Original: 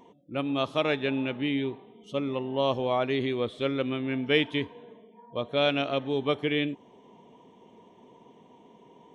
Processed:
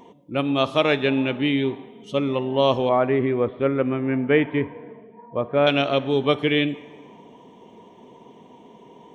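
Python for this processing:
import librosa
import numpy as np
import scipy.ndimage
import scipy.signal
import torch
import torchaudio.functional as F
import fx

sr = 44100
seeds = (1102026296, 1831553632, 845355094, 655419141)

y = fx.lowpass(x, sr, hz=2000.0, slope=24, at=(2.89, 5.67))
y = fx.rev_plate(y, sr, seeds[0], rt60_s=1.6, hf_ratio=0.75, predelay_ms=0, drr_db=16.5)
y = y * librosa.db_to_amplitude(7.0)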